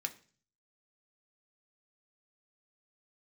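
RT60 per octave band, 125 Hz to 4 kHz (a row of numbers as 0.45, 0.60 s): 0.75, 0.55, 0.45, 0.40, 0.40, 0.50 s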